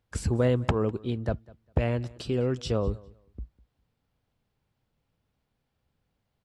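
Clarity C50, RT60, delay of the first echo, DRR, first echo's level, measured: no reverb audible, no reverb audible, 201 ms, no reverb audible, −23.0 dB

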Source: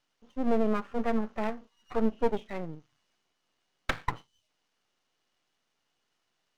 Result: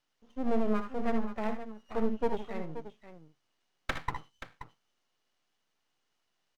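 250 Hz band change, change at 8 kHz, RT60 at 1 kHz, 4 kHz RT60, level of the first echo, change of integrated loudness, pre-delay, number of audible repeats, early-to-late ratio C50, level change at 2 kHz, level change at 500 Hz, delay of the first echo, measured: −2.5 dB, can't be measured, no reverb audible, no reverb audible, −11.0 dB, −3.0 dB, no reverb audible, 2, no reverb audible, −2.5 dB, −3.0 dB, 61 ms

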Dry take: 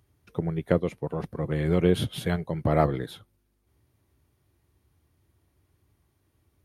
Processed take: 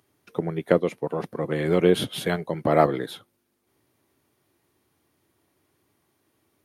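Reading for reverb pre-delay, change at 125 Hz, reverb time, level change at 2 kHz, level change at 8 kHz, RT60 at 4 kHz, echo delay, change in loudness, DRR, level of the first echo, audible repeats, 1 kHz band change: no reverb audible, −3.0 dB, no reverb audible, +5.0 dB, +5.0 dB, no reverb audible, no echo audible, +3.0 dB, no reverb audible, no echo audible, no echo audible, +5.0 dB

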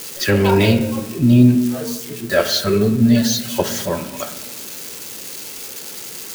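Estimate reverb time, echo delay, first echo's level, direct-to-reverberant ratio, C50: 1.1 s, no echo audible, no echo audible, 8.0 dB, 11.0 dB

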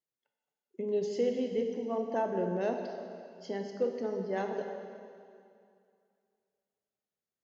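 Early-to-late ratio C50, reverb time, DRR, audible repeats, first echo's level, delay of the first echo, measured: 4.5 dB, 2.4 s, 3.0 dB, no echo audible, no echo audible, no echo audible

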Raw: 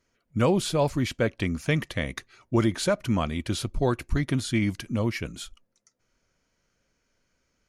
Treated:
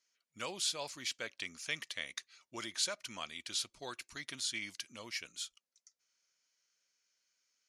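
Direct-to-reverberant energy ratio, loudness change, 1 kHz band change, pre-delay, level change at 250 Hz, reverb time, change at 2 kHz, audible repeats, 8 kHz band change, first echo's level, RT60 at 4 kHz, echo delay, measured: no reverb audible, −12.5 dB, −15.0 dB, no reverb audible, −27.0 dB, no reverb audible, −8.5 dB, no echo audible, −1.5 dB, no echo audible, no reverb audible, no echo audible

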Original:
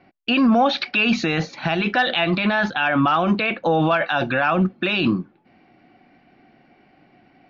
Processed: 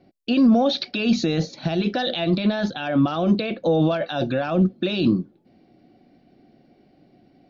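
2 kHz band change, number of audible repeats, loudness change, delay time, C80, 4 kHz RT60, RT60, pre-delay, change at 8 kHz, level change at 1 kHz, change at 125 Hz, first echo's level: −11.5 dB, no echo audible, −2.0 dB, no echo audible, no reverb audible, no reverb audible, no reverb audible, no reverb audible, can't be measured, −8.0 dB, +1.0 dB, no echo audible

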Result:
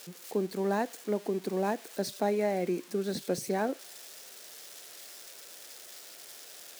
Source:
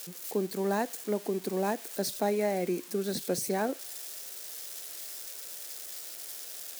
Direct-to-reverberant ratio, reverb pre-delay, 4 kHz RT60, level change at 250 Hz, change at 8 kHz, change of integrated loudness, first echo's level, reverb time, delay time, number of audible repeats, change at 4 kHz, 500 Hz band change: no reverb audible, no reverb audible, no reverb audible, 0.0 dB, −5.5 dB, +1.0 dB, no echo audible, no reverb audible, no echo audible, no echo audible, −2.5 dB, 0.0 dB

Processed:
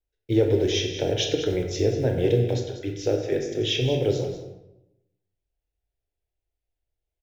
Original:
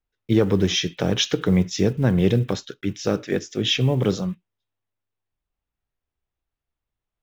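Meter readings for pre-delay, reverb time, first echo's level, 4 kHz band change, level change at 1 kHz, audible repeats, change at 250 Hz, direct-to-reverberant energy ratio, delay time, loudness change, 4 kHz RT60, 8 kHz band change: 19 ms, 0.85 s, −11.5 dB, −4.0 dB, −5.0 dB, 1, −6.0 dB, 2.0 dB, 191 ms, −2.5 dB, 0.60 s, can't be measured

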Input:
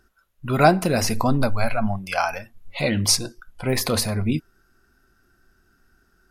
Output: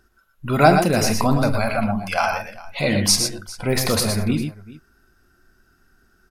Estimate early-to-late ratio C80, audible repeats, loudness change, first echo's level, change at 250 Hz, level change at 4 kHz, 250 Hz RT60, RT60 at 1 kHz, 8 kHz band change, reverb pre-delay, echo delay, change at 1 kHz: no reverb audible, 3, +2.5 dB, −12.5 dB, +2.5 dB, +2.5 dB, no reverb audible, no reverb audible, +2.5 dB, no reverb audible, 44 ms, +2.5 dB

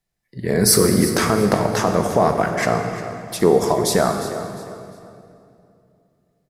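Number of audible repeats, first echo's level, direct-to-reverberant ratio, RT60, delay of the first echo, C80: 3, −14.0 dB, 4.5 dB, 2.6 s, 353 ms, 6.5 dB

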